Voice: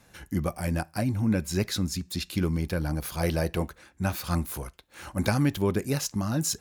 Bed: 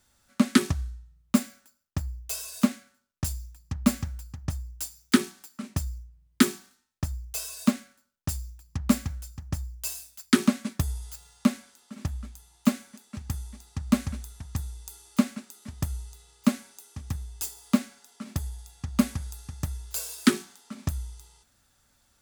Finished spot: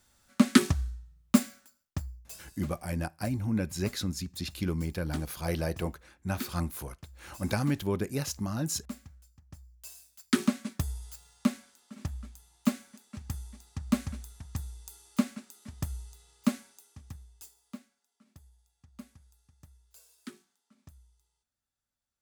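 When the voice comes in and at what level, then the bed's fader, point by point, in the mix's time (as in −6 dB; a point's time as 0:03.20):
2.25 s, −4.5 dB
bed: 0:01.81 0 dB
0:02.53 −18.5 dB
0:09.61 −18.5 dB
0:10.40 −4.5 dB
0:16.56 −4.5 dB
0:17.97 −24.5 dB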